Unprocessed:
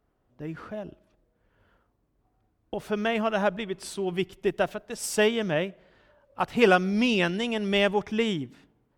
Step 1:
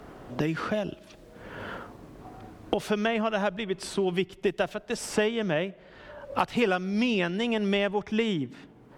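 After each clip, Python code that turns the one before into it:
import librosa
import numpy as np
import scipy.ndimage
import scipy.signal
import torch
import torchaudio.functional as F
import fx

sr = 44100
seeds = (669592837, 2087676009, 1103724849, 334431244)

y = fx.high_shelf(x, sr, hz=11000.0, db=-11.5)
y = fx.band_squash(y, sr, depth_pct=100)
y = F.gain(torch.from_numpy(y), -1.5).numpy()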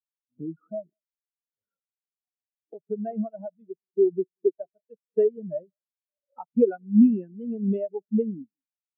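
y = x + 10.0 ** (-17.0 / 20.0) * np.pad(x, (int(188 * sr / 1000.0), 0))[:len(x)]
y = fx.spectral_expand(y, sr, expansion=4.0)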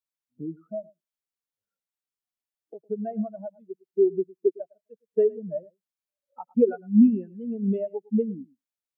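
y = x + 10.0 ** (-22.0 / 20.0) * np.pad(x, (int(108 * sr / 1000.0), 0))[:len(x)]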